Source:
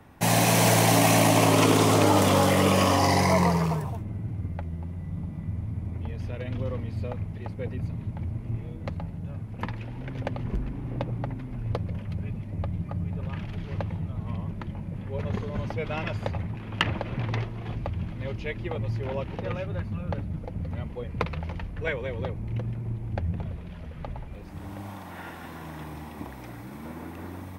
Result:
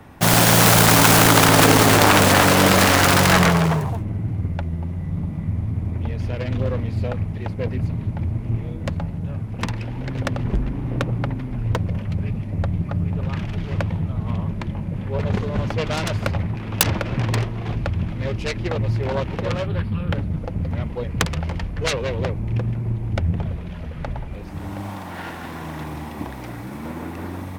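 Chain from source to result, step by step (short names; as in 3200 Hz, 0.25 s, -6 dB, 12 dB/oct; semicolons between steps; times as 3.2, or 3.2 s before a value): self-modulated delay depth 0.84 ms; 19.66–20.14 thirty-one-band EQ 630 Hz -6 dB, 3150 Hz +5 dB, 6300 Hz -12 dB; gain +8 dB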